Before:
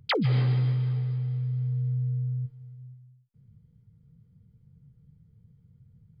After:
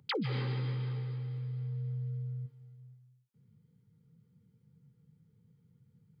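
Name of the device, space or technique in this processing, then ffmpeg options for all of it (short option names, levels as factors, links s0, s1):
PA system with an anti-feedback notch: -af "highpass=200,asuperstop=centerf=660:order=12:qfactor=3.6,alimiter=level_in=1.33:limit=0.0631:level=0:latency=1:release=244,volume=0.75"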